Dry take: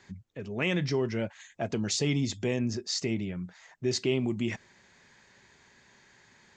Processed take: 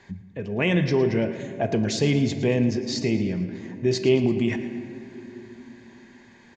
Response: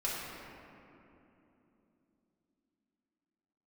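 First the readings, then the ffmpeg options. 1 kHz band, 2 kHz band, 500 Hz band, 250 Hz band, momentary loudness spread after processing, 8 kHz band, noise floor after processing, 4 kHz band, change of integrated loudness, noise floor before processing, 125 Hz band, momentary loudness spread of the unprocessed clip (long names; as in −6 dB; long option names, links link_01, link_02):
+7.0 dB, +5.0 dB, +8.5 dB, +8.0 dB, 18 LU, −1.0 dB, −52 dBFS, +2.0 dB, +7.0 dB, −61 dBFS, +7.0 dB, 12 LU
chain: -filter_complex "[0:a]lowpass=frequency=2500:poles=1,bandreject=frequency=1300:width=5.9,aecho=1:1:112|224|336|448:0.188|0.0904|0.0434|0.0208,asplit=2[link_01][link_02];[1:a]atrim=start_sample=2205[link_03];[link_02][link_03]afir=irnorm=-1:irlink=0,volume=-13dB[link_04];[link_01][link_04]amix=inputs=2:normalize=0,volume=6dB"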